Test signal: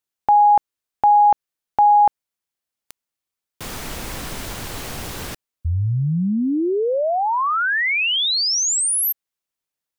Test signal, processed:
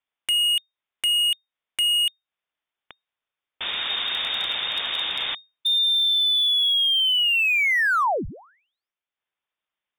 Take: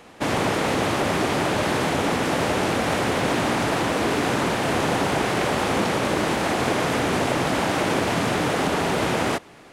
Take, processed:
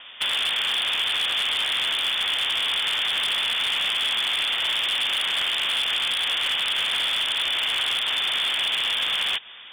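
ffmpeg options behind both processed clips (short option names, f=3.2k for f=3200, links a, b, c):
-af "acompressor=threshold=-23dB:ratio=5:attack=3.9:release=305:knee=1:detection=rms,lowpass=f=3.1k:t=q:w=0.5098,lowpass=f=3.1k:t=q:w=0.6013,lowpass=f=3.1k:t=q:w=0.9,lowpass=f=3.1k:t=q:w=2.563,afreqshift=-3700,aeval=exprs='0.0794*(abs(mod(val(0)/0.0794+3,4)-2)-1)':c=same,volume=4.5dB"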